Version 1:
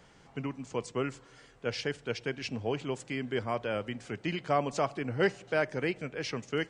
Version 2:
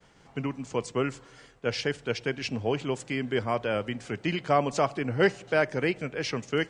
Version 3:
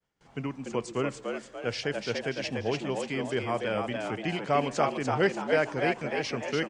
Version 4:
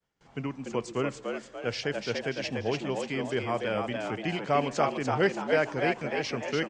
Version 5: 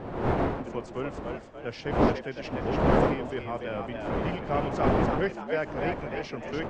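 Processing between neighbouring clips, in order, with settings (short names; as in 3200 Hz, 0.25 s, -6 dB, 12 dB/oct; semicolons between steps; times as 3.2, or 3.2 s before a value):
expander -54 dBFS; gain +4.5 dB
frequency-shifting echo 0.291 s, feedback 45%, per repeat +90 Hz, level -4.5 dB; gate with hold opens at -46 dBFS; gain -2.5 dB
LPF 8200 Hz 24 dB/oct
wind noise 640 Hz -26 dBFS; high shelf 4500 Hz -11.5 dB; gain -3.5 dB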